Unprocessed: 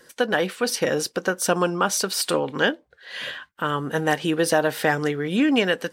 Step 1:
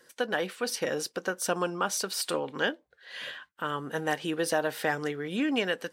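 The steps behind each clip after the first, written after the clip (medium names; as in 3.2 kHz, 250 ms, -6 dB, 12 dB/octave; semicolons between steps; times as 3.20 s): bass shelf 180 Hz -6.5 dB; trim -7 dB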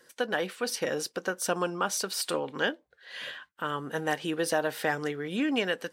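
no audible change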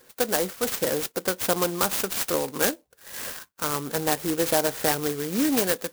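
sampling jitter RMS 0.12 ms; trim +5 dB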